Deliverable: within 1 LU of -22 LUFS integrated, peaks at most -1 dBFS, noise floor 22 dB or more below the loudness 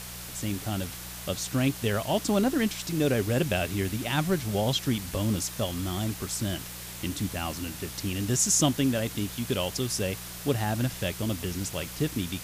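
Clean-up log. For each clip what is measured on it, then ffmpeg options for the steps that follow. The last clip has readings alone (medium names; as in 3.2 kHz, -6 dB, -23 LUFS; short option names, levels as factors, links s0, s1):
hum 60 Hz; highest harmonic 180 Hz; hum level -42 dBFS; noise floor -40 dBFS; noise floor target -51 dBFS; loudness -28.5 LUFS; peak level -11.0 dBFS; loudness target -22.0 LUFS
-> -af "bandreject=f=60:t=h:w=4,bandreject=f=120:t=h:w=4,bandreject=f=180:t=h:w=4"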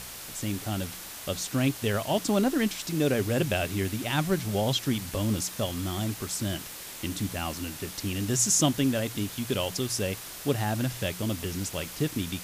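hum not found; noise floor -41 dBFS; noise floor target -51 dBFS
-> -af "afftdn=nr=10:nf=-41"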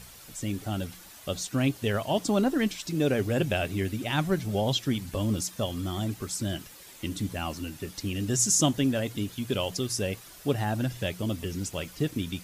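noise floor -49 dBFS; noise floor target -51 dBFS
-> -af "afftdn=nr=6:nf=-49"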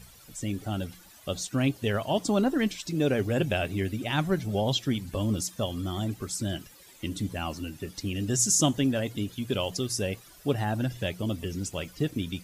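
noise floor -53 dBFS; loudness -29.0 LUFS; peak level -11.0 dBFS; loudness target -22.0 LUFS
-> -af "volume=2.24"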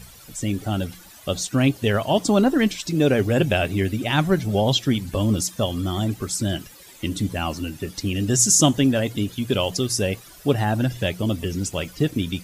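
loudness -22.0 LUFS; peak level -4.0 dBFS; noise floor -46 dBFS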